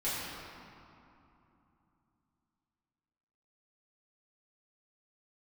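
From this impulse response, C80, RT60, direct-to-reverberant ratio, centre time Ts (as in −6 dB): −1.0 dB, 2.9 s, −12.0 dB, 160 ms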